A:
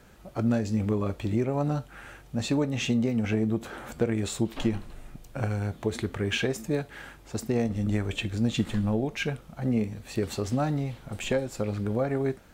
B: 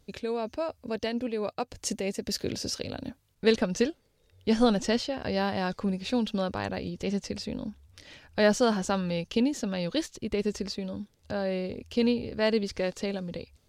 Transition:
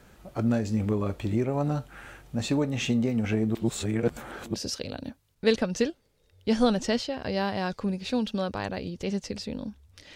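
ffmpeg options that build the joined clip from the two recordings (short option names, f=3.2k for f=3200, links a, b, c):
-filter_complex "[0:a]apad=whole_dur=10.15,atrim=end=10.15,asplit=2[a][b];[a]atrim=end=3.552[c];[b]atrim=start=3.548:end=4.542,asetpts=PTS-STARTPTS,areverse[d];[1:a]atrim=start=2.538:end=8.15[e];[c][d]acrossfade=d=0.004:c1=hsin:c2=hsin[f];[f][e]acrossfade=d=0.004:c1=hsin:c2=hsin"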